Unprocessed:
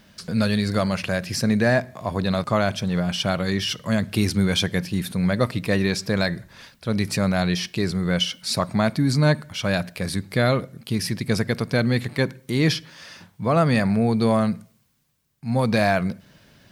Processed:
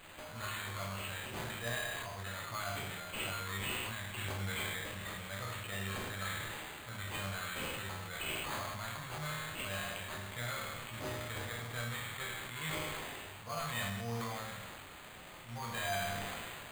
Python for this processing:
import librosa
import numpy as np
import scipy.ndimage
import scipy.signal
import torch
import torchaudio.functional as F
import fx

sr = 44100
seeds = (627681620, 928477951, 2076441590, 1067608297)

y = fx.delta_mod(x, sr, bps=64000, step_db=-34.0)
y = fx.tone_stack(y, sr, knobs='10-0-10')
y = fx.resonator_bank(y, sr, root=39, chord='major', decay_s=0.76)
y = np.repeat(y[::8], 8)[:len(y)]
y = fx.sustainer(y, sr, db_per_s=20.0)
y = F.gain(torch.from_numpy(y), 9.0).numpy()